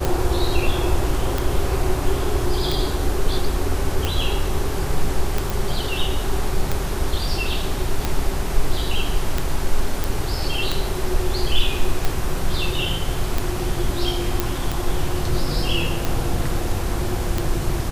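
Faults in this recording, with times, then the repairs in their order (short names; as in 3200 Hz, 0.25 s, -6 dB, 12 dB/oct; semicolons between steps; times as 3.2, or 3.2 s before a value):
tick 45 rpm
5.5 pop
10.04 pop
14.4 pop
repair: de-click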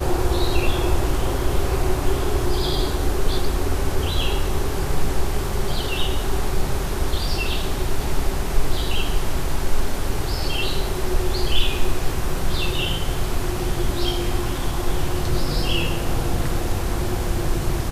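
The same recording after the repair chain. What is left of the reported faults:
none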